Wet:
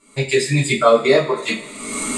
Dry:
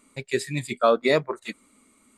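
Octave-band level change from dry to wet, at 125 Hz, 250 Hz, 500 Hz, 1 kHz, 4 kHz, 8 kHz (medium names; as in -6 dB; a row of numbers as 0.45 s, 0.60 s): +12.5 dB, +8.0 dB, +7.5 dB, +6.5 dB, +9.5 dB, +16.0 dB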